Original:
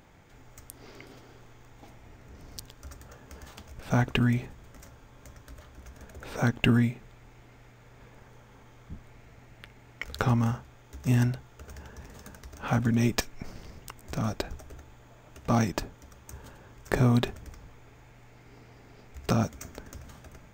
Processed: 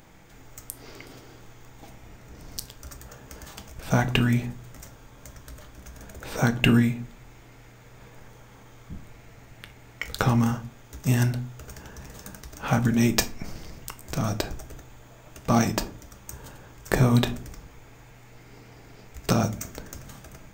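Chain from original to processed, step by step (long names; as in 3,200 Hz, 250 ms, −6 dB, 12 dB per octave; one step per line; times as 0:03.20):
high-shelf EQ 5,400 Hz +7.5 dB
convolution reverb RT60 0.40 s, pre-delay 6 ms, DRR 9 dB
level +3 dB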